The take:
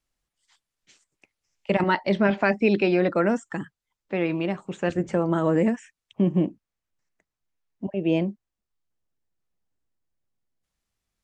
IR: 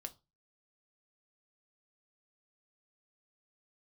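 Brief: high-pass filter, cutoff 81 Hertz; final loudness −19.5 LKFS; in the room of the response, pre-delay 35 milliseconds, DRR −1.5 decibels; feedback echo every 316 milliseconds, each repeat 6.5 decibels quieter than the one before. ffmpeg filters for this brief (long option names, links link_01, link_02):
-filter_complex "[0:a]highpass=81,aecho=1:1:316|632|948|1264|1580|1896:0.473|0.222|0.105|0.0491|0.0231|0.0109,asplit=2[link_01][link_02];[1:a]atrim=start_sample=2205,adelay=35[link_03];[link_02][link_03]afir=irnorm=-1:irlink=0,volume=5.5dB[link_04];[link_01][link_04]amix=inputs=2:normalize=0,volume=0.5dB"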